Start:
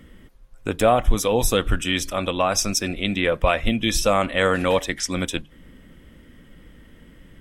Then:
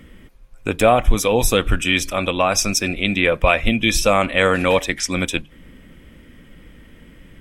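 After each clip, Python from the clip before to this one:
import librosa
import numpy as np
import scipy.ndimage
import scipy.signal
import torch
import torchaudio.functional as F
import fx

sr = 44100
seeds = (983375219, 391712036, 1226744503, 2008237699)

y = fx.peak_eq(x, sr, hz=2400.0, db=7.5, octaves=0.21)
y = y * 10.0 ** (3.0 / 20.0)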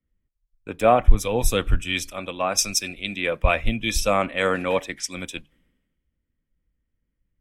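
y = fx.band_widen(x, sr, depth_pct=100)
y = y * 10.0 ** (-7.5 / 20.0)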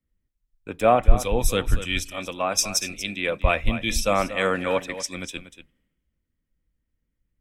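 y = x + 10.0 ** (-12.5 / 20.0) * np.pad(x, (int(237 * sr / 1000.0), 0))[:len(x)]
y = y * 10.0 ** (-1.0 / 20.0)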